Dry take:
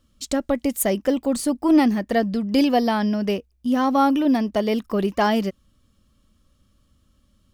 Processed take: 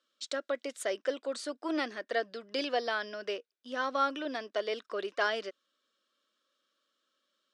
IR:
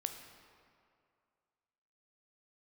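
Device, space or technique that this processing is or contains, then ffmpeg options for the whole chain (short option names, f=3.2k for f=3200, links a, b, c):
phone speaker on a table: -af "highpass=f=410:w=0.5412,highpass=f=410:w=1.3066,equalizer=f=840:t=q:w=4:g=-10,equalizer=f=1.5k:t=q:w=4:g=8,equalizer=f=3.7k:t=q:w=4:g=6,equalizer=f=6.8k:t=q:w=4:g=-3,lowpass=f=7.5k:w=0.5412,lowpass=f=7.5k:w=1.3066,volume=-8dB"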